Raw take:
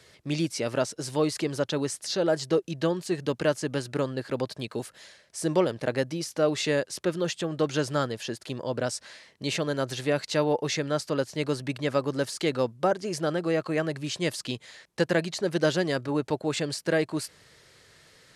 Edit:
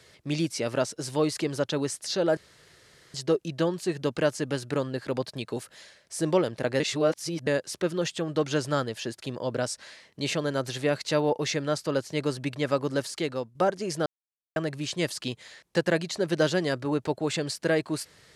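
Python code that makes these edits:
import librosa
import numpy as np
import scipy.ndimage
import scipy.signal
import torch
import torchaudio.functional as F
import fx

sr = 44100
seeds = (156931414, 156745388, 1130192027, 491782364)

y = fx.edit(x, sr, fx.insert_room_tone(at_s=2.37, length_s=0.77),
    fx.reverse_span(start_s=6.03, length_s=0.67),
    fx.fade_out_to(start_s=12.22, length_s=0.56, floor_db=-9.5),
    fx.silence(start_s=13.29, length_s=0.5), tone=tone)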